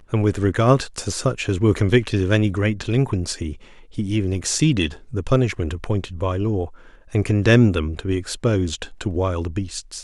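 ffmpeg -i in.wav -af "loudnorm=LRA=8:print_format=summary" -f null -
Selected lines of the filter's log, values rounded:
Input Integrated:    -21.1 LUFS
Input True Peak:      -3.5 dBTP
Input LRA:             2.7 LU
Input Threshold:     -31.3 LUFS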